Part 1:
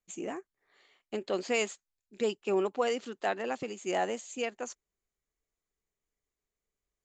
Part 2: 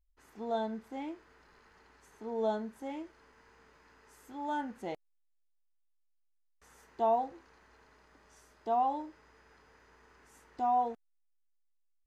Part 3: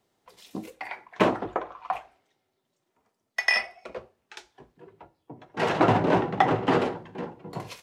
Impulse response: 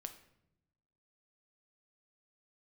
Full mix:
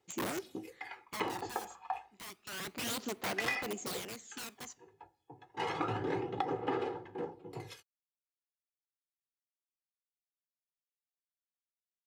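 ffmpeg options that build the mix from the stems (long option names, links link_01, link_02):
-filter_complex "[0:a]alimiter=limit=-23dB:level=0:latency=1:release=291,aeval=exprs='(mod(44.7*val(0)+1,2)-1)/44.7':channel_layout=same,volume=7.5dB,afade=type=out:start_time=0.79:duration=0.74:silence=0.334965,afade=type=in:start_time=2.45:duration=0.47:silence=0.316228,afade=type=out:start_time=3.74:duration=0.28:silence=0.446684,asplit=2[link_01][link_02];[link_02]volume=-4.5dB[link_03];[2:a]aecho=1:1:2.4:0.68,flanger=delay=2.1:depth=2.3:regen=-73:speed=1.3:shape=triangular,volume=-6dB[link_04];[3:a]atrim=start_sample=2205[link_05];[link_03][link_05]afir=irnorm=-1:irlink=0[link_06];[link_01][link_04][link_06]amix=inputs=3:normalize=0,highpass=93,aphaser=in_gain=1:out_gain=1:delay=1.2:decay=0.45:speed=0.29:type=sinusoidal,acompressor=threshold=-31dB:ratio=6"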